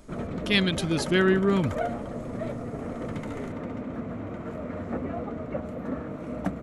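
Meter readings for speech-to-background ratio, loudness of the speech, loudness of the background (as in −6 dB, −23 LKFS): 9.5 dB, −24.5 LKFS, −34.0 LKFS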